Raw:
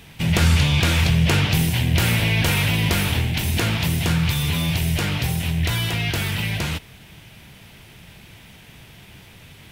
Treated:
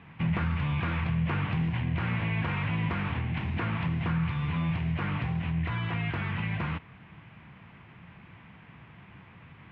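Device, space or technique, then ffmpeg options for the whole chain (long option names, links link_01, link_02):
bass amplifier: -af "acompressor=threshold=-22dB:ratio=3,highpass=78,equalizer=frequency=170:width_type=q:width=4:gain=3,equalizer=frequency=410:width_type=q:width=4:gain=-5,equalizer=frequency=600:width_type=q:width=4:gain=-4,equalizer=frequency=1100:width_type=q:width=4:gain=8,lowpass=frequency=2300:width=0.5412,lowpass=frequency=2300:width=1.3066,volume=-4.5dB"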